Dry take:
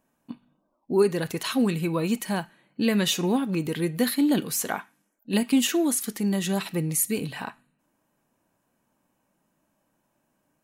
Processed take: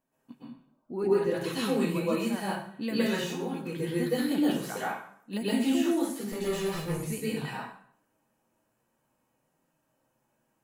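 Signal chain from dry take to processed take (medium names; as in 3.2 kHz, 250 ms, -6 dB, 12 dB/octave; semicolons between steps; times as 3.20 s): 6.32–6.86 s: comb filter that takes the minimum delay 1.7 ms; de-esser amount 65%; 0.91–1.32 s: treble shelf 3.7 kHz -11.5 dB; 3.09–3.83 s: compression, threshold -28 dBFS, peak gain reduction 9.5 dB; flange 0.31 Hz, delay 7.4 ms, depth 2.5 ms, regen -51%; reverberation RT60 0.60 s, pre-delay 108 ms, DRR -8.5 dB; trim -6.5 dB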